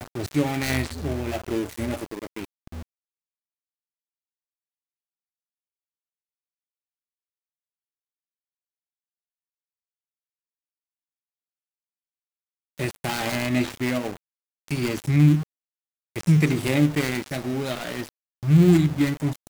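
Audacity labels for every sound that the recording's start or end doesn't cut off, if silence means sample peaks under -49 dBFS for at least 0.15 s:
2.670000	2.820000	sound
12.780000	14.170000	sound
14.680000	15.430000	sound
16.160000	18.090000	sound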